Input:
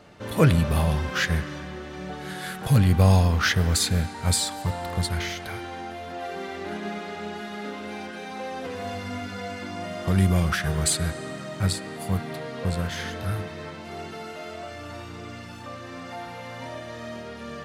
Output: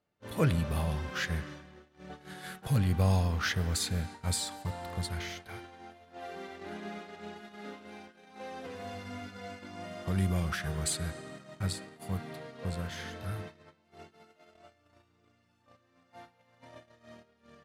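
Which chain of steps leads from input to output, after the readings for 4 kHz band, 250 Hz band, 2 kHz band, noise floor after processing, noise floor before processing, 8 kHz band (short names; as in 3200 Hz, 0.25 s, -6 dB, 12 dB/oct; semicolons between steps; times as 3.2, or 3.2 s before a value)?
-9.0 dB, -9.5 dB, -9.5 dB, -70 dBFS, -39 dBFS, -9.0 dB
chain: gate -34 dBFS, range -22 dB; gain -9 dB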